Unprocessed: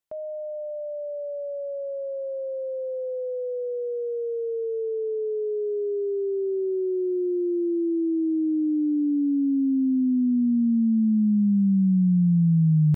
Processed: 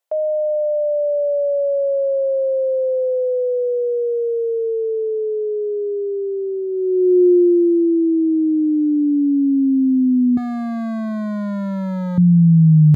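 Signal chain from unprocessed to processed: 10.37–12.18 overloaded stage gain 29.5 dB; high-pass sweep 580 Hz -> 86 Hz, 6.68–8.76; gain +6 dB

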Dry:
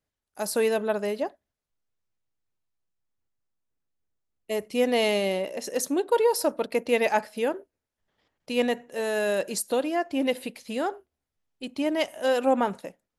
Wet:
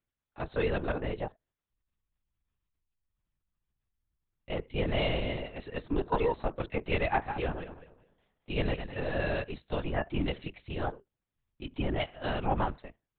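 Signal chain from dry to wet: 7.13–9.44 regenerating reverse delay 0.102 s, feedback 50%, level -8 dB; bell 540 Hz -10.5 dB 0.29 oct; LPC vocoder at 8 kHz whisper; gain -3.5 dB

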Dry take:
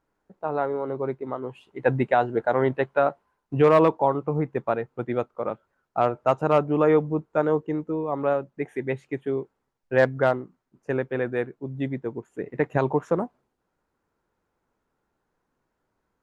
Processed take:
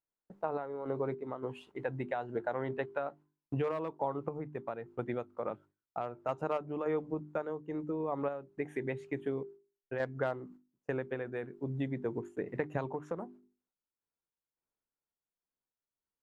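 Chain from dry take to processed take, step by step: gate with hold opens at -45 dBFS; notches 50/100/150/200/250/300/350/400 Hz; compressor 6:1, threshold -30 dBFS, peak gain reduction 16 dB; random-step tremolo

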